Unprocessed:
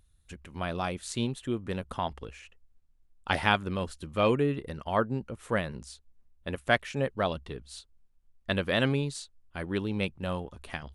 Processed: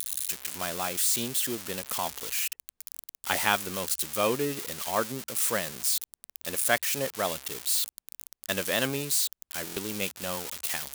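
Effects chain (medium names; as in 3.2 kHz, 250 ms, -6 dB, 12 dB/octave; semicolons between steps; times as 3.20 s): zero-crossing glitches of -20 dBFS; high-pass 330 Hz 6 dB/octave; buffer glitch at 9.65 s, samples 1024, times 4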